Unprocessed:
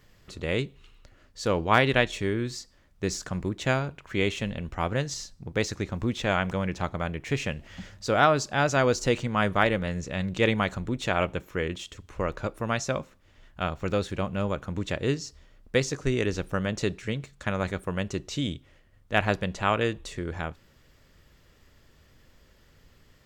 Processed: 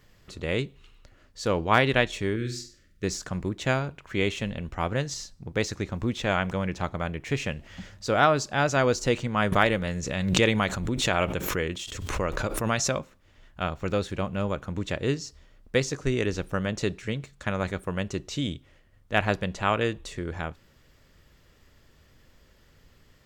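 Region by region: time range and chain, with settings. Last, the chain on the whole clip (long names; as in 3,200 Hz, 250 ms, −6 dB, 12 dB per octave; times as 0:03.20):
0:02.36–0:03.04: Butterworth band-reject 840 Hz, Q 1 + mains-hum notches 50/100/150/200/250/300/350/400 Hz + flutter between parallel walls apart 8.3 metres, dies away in 0.38 s
0:09.52–0:12.99: high-shelf EQ 4,000 Hz +5 dB + background raised ahead of every attack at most 41 dB per second
whole clip: no processing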